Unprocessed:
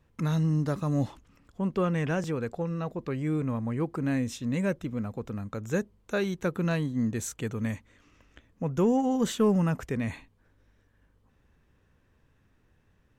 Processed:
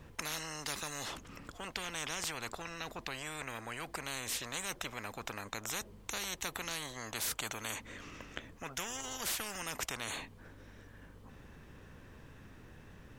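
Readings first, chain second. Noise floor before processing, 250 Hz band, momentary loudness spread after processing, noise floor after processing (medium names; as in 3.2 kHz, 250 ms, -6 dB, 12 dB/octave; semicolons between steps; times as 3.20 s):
-67 dBFS, -21.5 dB, 19 LU, -56 dBFS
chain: spectrum-flattening compressor 10:1; trim -2.5 dB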